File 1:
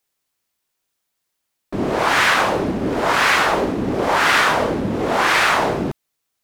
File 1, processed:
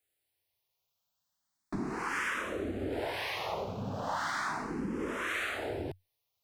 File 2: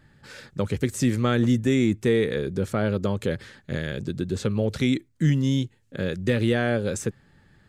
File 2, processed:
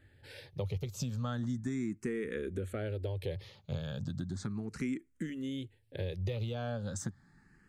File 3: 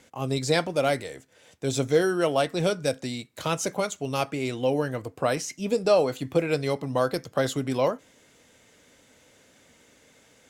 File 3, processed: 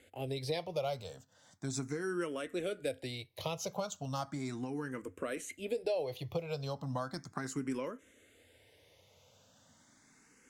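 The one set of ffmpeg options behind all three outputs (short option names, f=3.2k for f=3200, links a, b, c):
-filter_complex "[0:a]equalizer=f=93:t=o:w=0.32:g=8.5,acompressor=threshold=-26dB:ratio=6,asplit=2[a][b];[b]afreqshift=0.36[c];[a][c]amix=inputs=2:normalize=1,volume=-4dB"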